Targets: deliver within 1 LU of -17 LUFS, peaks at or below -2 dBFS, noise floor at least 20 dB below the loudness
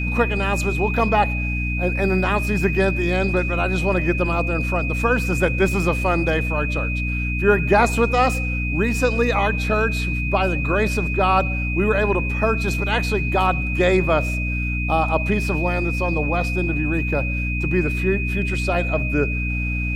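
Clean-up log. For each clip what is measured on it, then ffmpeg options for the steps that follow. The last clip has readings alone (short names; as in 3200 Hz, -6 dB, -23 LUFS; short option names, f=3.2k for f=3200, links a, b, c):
hum 60 Hz; harmonics up to 300 Hz; hum level -22 dBFS; steady tone 2500 Hz; tone level -26 dBFS; loudness -20.5 LUFS; peak -3.5 dBFS; loudness target -17.0 LUFS
-> -af "bandreject=f=60:t=h:w=4,bandreject=f=120:t=h:w=4,bandreject=f=180:t=h:w=4,bandreject=f=240:t=h:w=4,bandreject=f=300:t=h:w=4"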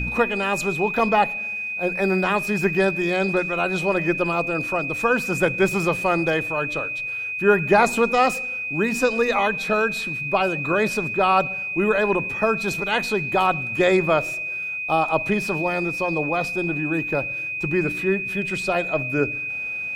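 hum none; steady tone 2500 Hz; tone level -26 dBFS
-> -af "bandreject=f=2.5k:w=30"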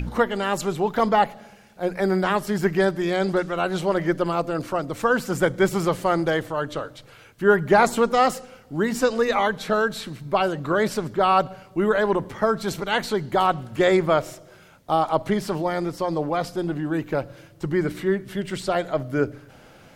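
steady tone none; loudness -23.0 LUFS; peak -4.5 dBFS; loudness target -17.0 LUFS
-> -af "volume=6dB,alimiter=limit=-2dB:level=0:latency=1"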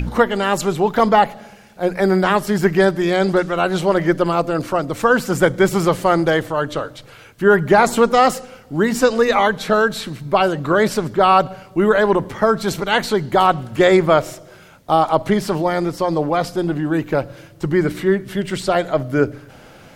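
loudness -17.5 LUFS; peak -2.0 dBFS; noise floor -44 dBFS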